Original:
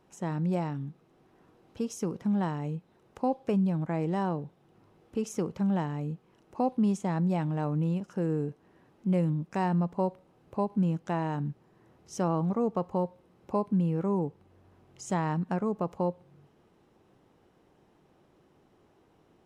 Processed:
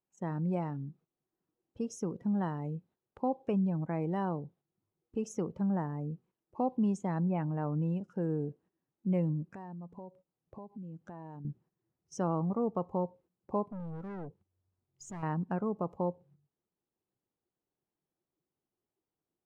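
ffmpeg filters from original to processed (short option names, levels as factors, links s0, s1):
-filter_complex "[0:a]asettb=1/sr,asplit=3[s0][s1][s2];[s0]atrim=end=5.694[s3];[s1]atrim=start=5.69:end=6.12,asetpts=PTS-STARTPTS,afade=t=in:d=0.004:c=qsin,afade=t=out:st=0.426:d=0.004:c=qsin,equalizer=f=3700:t=o:w=0.77:g=-11.5[s4];[s2]atrim=start=6.116[s5];[s3][s4]acrossfade=d=0.004:c1=hsin:c2=qsin[s6];[s6][s5]acrossfade=d=0.004:c1=qsin:c2=hsin,asettb=1/sr,asplit=3[s7][s8][s9];[s7]atrim=end=7.234[s10];[s8]atrim=start=7.23:end=7.8,asetpts=PTS-STARTPTS,afade=t=in:d=0.004:c=qsin,afade=t=out:st=0.566:d=0.004:c=qsin,lowpass=f=3200:w=0.5412,lowpass=f=3200:w=1.3066[s11];[s9]atrim=start=7.796[s12];[s10][s11]acrossfade=d=0.004:c1=hsin:c2=qsin[s13];[s13][s12]acrossfade=d=0.004:c1=qsin:c2=hsin,asettb=1/sr,asplit=3[s14][s15][s16];[s14]atrim=end=9.554[s17];[s15]atrim=start=9.55:end=11.45,asetpts=PTS-STARTPTS,afade=t=in:d=0.004:c=qsin,afade=t=out:st=1.896:d=0.004:c=qsin,acompressor=threshold=0.01:ratio=5:attack=3.2:release=140:knee=1:detection=peak[s18];[s16]atrim=start=11.446[s19];[s17][s18]acrossfade=d=0.004:c1=hsin:c2=qsin[s20];[s20][s19]acrossfade=d=0.004:c1=qsin:c2=hsin,asettb=1/sr,asplit=3[s21][s22][s23];[s21]atrim=end=13.684[s24];[s22]atrim=start=13.68:end=15.23,asetpts=PTS-STARTPTS,afade=t=in:d=0.004:c=qsin,afade=t=out:st=1.546:d=0.004:c=qsin,aeval=exprs='(tanh(63.1*val(0)+0.3)-tanh(0.3))/63.1':c=same[s25];[s23]atrim=start=15.226[s26];[s24][s25]acrossfade=d=0.004:c1=hsin:c2=qsin[s27];[s27][s26]acrossfade=d=0.004:c1=qsin:c2=hsin,afftdn=nr=15:nf=-46,agate=range=0.282:threshold=0.00158:ratio=16:detection=peak,volume=0.668"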